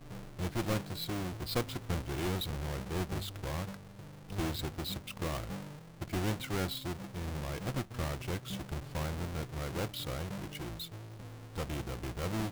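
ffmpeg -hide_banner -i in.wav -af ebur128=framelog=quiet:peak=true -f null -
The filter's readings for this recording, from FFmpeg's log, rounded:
Integrated loudness:
  I:         -37.9 LUFS
  Threshold: -48.0 LUFS
Loudness range:
  LRA:         3.1 LU
  Threshold: -58.1 LUFS
  LRA low:   -39.6 LUFS
  LRA high:  -36.5 LUFS
True peak:
  Peak:      -20.0 dBFS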